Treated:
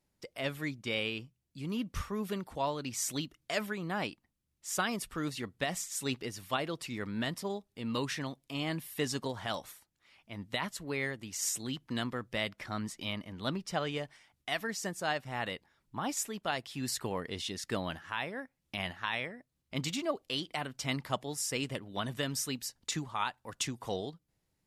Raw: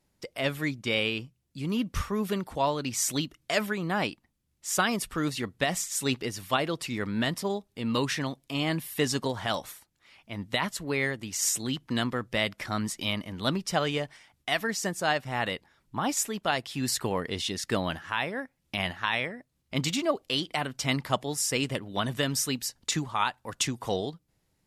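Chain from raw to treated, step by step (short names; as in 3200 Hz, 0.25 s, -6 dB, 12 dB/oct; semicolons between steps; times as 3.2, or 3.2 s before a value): 12.5–13.96 high shelf 5700 Hz -5.5 dB; gain -6.5 dB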